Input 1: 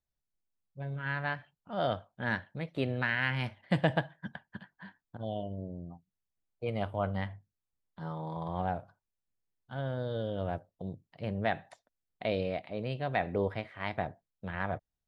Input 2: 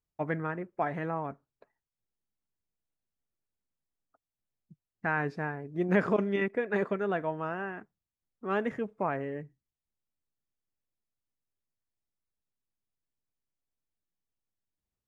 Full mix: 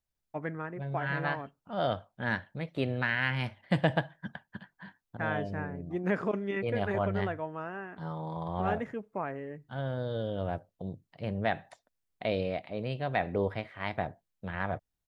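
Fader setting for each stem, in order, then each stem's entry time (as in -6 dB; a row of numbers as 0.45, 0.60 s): +1.0, -4.0 dB; 0.00, 0.15 s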